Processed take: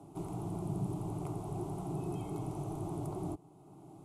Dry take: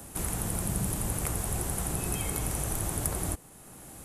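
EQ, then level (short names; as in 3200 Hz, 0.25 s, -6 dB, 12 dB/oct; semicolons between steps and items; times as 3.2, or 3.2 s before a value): band-pass 290 Hz, Q 0.65; fixed phaser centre 340 Hz, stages 8; +2.0 dB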